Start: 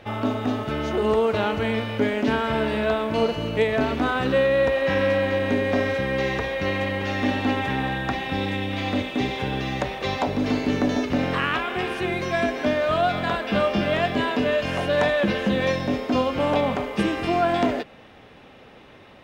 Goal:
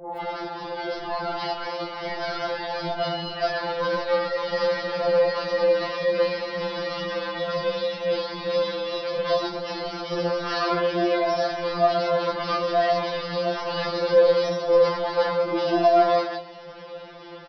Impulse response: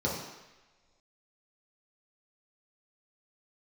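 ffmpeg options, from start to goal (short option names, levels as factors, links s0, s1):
-filter_complex "[0:a]acontrast=34,asplit=2[s0][s1];[1:a]atrim=start_sample=2205,afade=t=out:st=0.37:d=0.01,atrim=end_sample=16758[s2];[s1][s2]afir=irnorm=-1:irlink=0,volume=0.112[s3];[s0][s3]amix=inputs=2:normalize=0,aeval=exprs='0.631*sin(PI/2*2.82*val(0)/0.631)':c=same,acompressor=threshold=0.0891:ratio=1.5,aresample=11025,aresample=44100,bass=f=250:g=-15,treble=f=4000:g=15,acrossover=split=820|3400[s4][s5][s6];[s5]adelay=140[s7];[s6]adelay=170[s8];[s4][s7][s8]amix=inputs=3:normalize=0,flanger=delay=19:depth=5.9:speed=1.8,atempo=1.1,equalizer=f=2500:w=0.92:g=-12,afftfilt=real='re*2.83*eq(mod(b,8),0)':imag='im*2.83*eq(mod(b,8),0)':win_size=2048:overlap=0.75"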